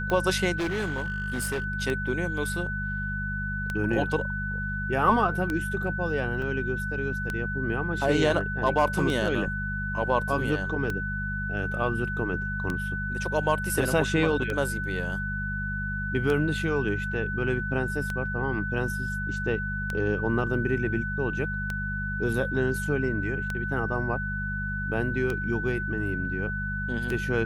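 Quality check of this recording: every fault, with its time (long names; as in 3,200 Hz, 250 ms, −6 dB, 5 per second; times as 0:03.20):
mains hum 50 Hz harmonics 4 −33 dBFS
scratch tick 33 1/3 rpm −16 dBFS
whistle 1,500 Hz −31 dBFS
0:00.58–0:01.64: clipping −25 dBFS
0:06.42: drop-out 3.3 ms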